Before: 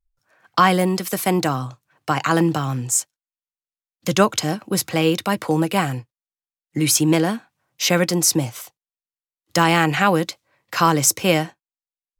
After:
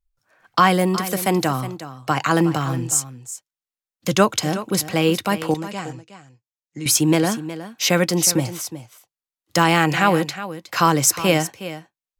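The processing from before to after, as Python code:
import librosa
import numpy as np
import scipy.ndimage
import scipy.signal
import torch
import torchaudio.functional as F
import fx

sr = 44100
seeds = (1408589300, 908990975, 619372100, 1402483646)

p1 = fx.ladder_lowpass(x, sr, hz=7300.0, resonance_pct=60, at=(5.54, 6.86))
y = p1 + fx.echo_single(p1, sr, ms=365, db=-13.5, dry=0)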